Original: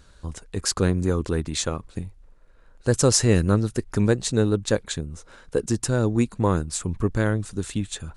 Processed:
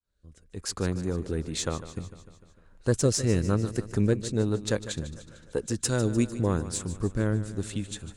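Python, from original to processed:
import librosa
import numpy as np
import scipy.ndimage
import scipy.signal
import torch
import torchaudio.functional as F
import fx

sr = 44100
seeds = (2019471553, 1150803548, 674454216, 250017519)

p1 = fx.fade_in_head(x, sr, length_s=1.2)
p2 = fx.rotary(p1, sr, hz=1.0)
p3 = fx.high_shelf(p2, sr, hz=2200.0, db=10.0, at=(5.84, 6.39), fade=0.02)
p4 = fx.cheby_harmonics(p3, sr, harmonics=(4,), levels_db=(-28,), full_scale_db=-7.5)
p5 = p4 + fx.echo_feedback(p4, sr, ms=150, feedback_pct=59, wet_db=-14, dry=0)
y = F.gain(torch.from_numpy(p5), -3.5).numpy()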